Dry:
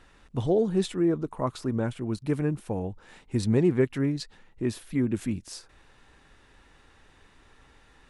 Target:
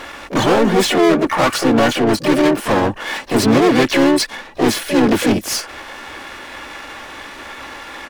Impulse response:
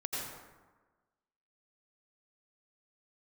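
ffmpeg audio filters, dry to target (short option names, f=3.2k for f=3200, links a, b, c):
-filter_complex "[0:a]bandreject=f=3.7k:w=8.5,aecho=1:1:3.5:0.57,asplit=2[a][b];[b]highpass=f=720:p=1,volume=31dB,asoftclip=type=tanh:threshold=-11.5dB[c];[a][c]amix=inputs=2:normalize=0,lowpass=f=6k:p=1,volume=-6dB,asplit=2[d][e];[e]adynamicsmooth=sensitivity=5.5:basefreq=560,volume=-2dB[f];[d][f]amix=inputs=2:normalize=0,asplit=3[g][h][i];[h]asetrate=55563,aresample=44100,atempo=0.793701,volume=-4dB[j];[i]asetrate=88200,aresample=44100,atempo=0.5,volume=-6dB[k];[g][j][k]amix=inputs=3:normalize=0,volume=-1.5dB"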